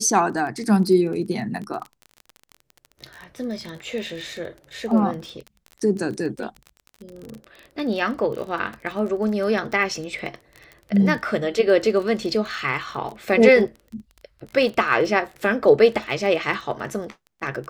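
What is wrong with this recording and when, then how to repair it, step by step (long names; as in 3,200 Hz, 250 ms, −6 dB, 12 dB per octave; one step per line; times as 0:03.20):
surface crackle 27 per second −30 dBFS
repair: click removal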